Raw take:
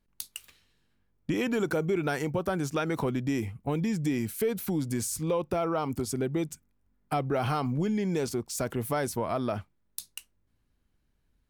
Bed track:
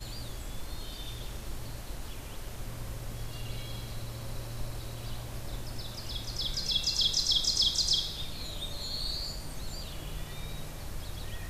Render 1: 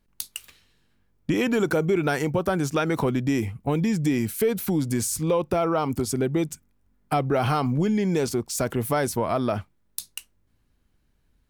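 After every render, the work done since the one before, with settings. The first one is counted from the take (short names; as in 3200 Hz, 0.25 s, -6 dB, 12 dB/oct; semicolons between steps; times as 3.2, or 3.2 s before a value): gain +5.5 dB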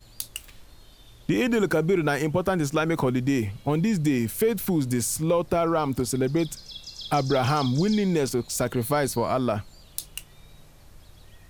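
add bed track -11 dB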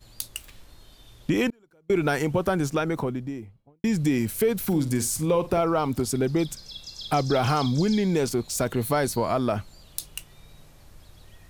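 1.5–1.9 gate -16 dBFS, range -37 dB; 2.49–3.84 studio fade out; 4.58–5.61 flutter echo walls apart 8.1 m, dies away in 0.22 s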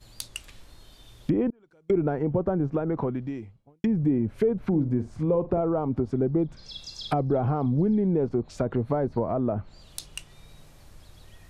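treble ducked by the level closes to 670 Hz, closed at -21 dBFS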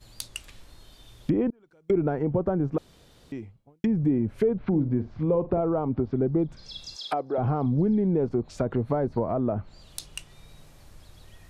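2.78–3.32 room tone; 4.44–6.26 LPF 4200 Hz 24 dB/oct; 6.96–7.38 HPF 450 Hz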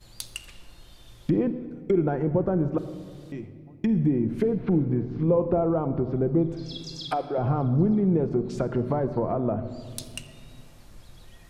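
shoebox room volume 3800 m³, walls mixed, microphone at 0.85 m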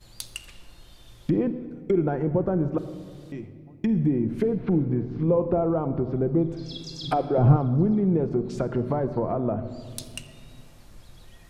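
7.03–7.57 low shelf 450 Hz +10 dB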